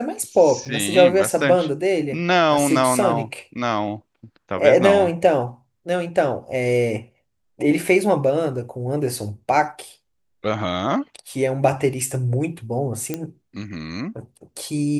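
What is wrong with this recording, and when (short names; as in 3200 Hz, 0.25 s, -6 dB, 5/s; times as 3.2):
0.65–0.66 gap 6.2 ms
13.14 pop -11 dBFS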